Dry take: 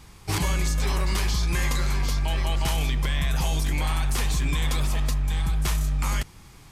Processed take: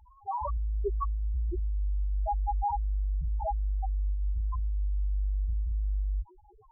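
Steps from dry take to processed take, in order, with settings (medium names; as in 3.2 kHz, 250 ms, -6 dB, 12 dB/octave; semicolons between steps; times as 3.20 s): high-order bell 690 Hz +14.5 dB 2.3 oct; loudest bins only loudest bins 1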